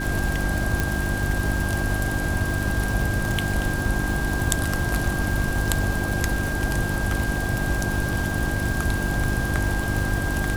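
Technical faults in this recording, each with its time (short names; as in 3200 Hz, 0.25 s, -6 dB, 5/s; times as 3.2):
crackle 590/s -29 dBFS
hum 50 Hz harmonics 7 -28 dBFS
tone 1600 Hz -29 dBFS
0.8 pop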